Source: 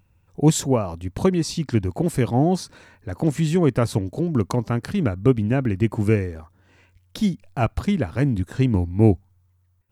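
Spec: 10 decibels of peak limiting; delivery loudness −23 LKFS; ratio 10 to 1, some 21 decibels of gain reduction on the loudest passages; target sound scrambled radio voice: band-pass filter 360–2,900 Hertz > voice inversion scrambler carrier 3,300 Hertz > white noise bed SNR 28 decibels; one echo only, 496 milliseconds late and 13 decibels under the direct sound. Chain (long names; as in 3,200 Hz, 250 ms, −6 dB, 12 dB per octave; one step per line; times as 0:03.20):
downward compressor 10 to 1, threshold −32 dBFS
brickwall limiter −30 dBFS
band-pass filter 360–2,900 Hz
single-tap delay 496 ms −13 dB
voice inversion scrambler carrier 3,300 Hz
white noise bed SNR 28 dB
level +21 dB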